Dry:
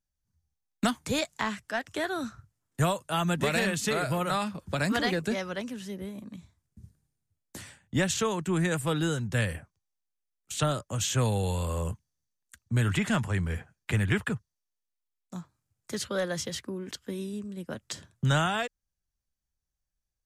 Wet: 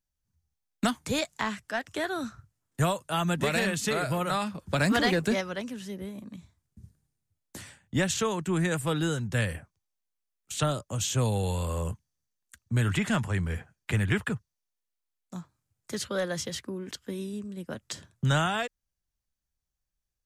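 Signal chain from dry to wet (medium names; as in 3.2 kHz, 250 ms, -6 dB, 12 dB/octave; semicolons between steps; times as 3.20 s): 4.73–5.41 s: waveshaping leveller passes 1; 10.70–11.34 s: dynamic bell 1.7 kHz, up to -6 dB, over -48 dBFS, Q 1.5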